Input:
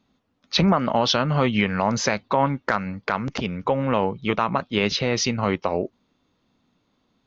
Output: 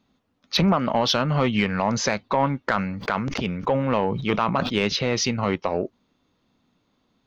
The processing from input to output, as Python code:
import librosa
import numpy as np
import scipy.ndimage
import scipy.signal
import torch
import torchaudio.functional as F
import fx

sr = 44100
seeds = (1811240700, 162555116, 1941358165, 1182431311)

y = 10.0 ** (-9.0 / 20.0) * np.tanh(x / 10.0 ** (-9.0 / 20.0))
y = fx.sustainer(y, sr, db_per_s=45.0, at=(2.68, 4.73))